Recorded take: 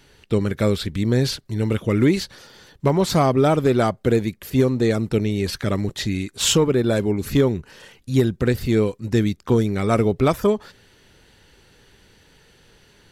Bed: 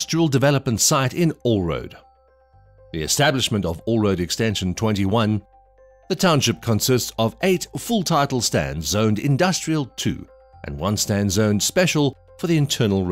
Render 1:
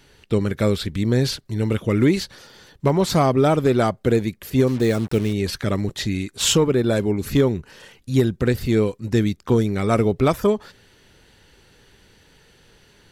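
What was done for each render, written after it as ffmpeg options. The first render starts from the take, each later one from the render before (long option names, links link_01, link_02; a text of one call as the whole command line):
ffmpeg -i in.wav -filter_complex "[0:a]asplit=3[link_01][link_02][link_03];[link_01]afade=type=out:start_time=4.66:duration=0.02[link_04];[link_02]acrusher=bits=5:mix=0:aa=0.5,afade=type=in:start_time=4.66:duration=0.02,afade=type=out:start_time=5.32:duration=0.02[link_05];[link_03]afade=type=in:start_time=5.32:duration=0.02[link_06];[link_04][link_05][link_06]amix=inputs=3:normalize=0" out.wav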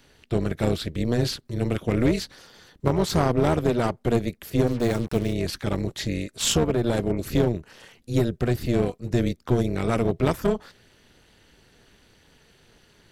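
ffmpeg -i in.wav -filter_complex "[0:a]tremolo=f=240:d=0.824,acrossover=split=360|4700[link_01][link_02][link_03];[link_02]aeval=exprs='clip(val(0),-1,0.0501)':channel_layout=same[link_04];[link_01][link_04][link_03]amix=inputs=3:normalize=0" out.wav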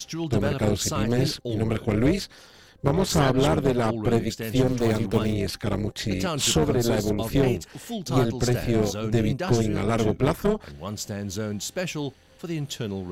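ffmpeg -i in.wav -i bed.wav -filter_complex "[1:a]volume=-11.5dB[link_01];[0:a][link_01]amix=inputs=2:normalize=0" out.wav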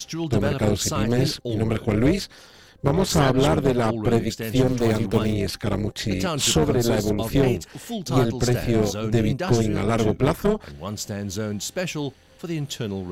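ffmpeg -i in.wav -af "volume=2dB,alimiter=limit=-3dB:level=0:latency=1" out.wav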